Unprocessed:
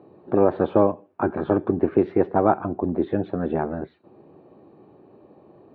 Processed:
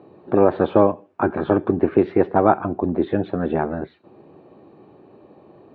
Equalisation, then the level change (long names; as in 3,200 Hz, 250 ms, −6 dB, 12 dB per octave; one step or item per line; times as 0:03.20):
high-frequency loss of the air 120 metres
high-shelf EQ 2,200 Hz +10.5 dB
+2.5 dB